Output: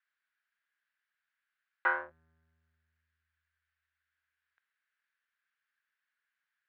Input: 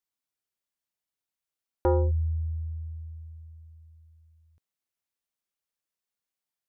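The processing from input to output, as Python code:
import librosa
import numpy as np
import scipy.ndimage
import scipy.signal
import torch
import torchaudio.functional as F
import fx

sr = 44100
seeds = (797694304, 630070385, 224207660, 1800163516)

y = fx.diode_clip(x, sr, knee_db=-25.5)
y = fx.highpass_res(y, sr, hz=1600.0, q=5.9)
y = fx.air_absorb(y, sr, metres=330.0)
y = F.gain(torch.from_numpy(y), 7.0).numpy()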